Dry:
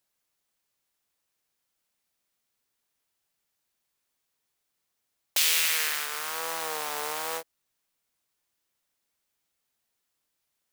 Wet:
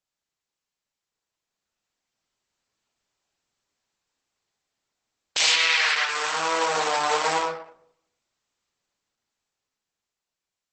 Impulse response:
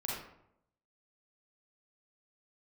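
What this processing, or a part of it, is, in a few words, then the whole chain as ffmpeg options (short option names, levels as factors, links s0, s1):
speakerphone in a meeting room: -filter_complex "[0:a]asettb=1/sr,asplit=3[s0][s1][s2];[s0]atrim=end=5.464[s3];[s1]atrim=start=5.46:end=6.09,asetpts=PTS-STARTPTS,afade=t=in:d=0.004:c=qsin,afade=t=out:st=0.626:d=0.004:c=qsin,acrossover=split=470 5400:gain=0.126 1 0.0891[s4][s5][s6];[s4][s5][s6]amix=inputs=3:normalize=0[s7];[s2]atrim=start=6.086[s8];[s3][s7]acrossfade=d=0.004:c1=hsin:c2=qsin[s9];[s9][s8]acrossfade=d=0.004:c1=qsin:c2=hsin[s10];[1:a]atrim=start_sample=2205[s11];[s10][s11]afir=irnorm=-1:irlink=0,dynaudnorm=f=470:g=9:m=3.55,agate=range=0.447:threshold=0.00708:ratio=16:detection=peak" -ar 48000 -c:a libopus -b:a 12k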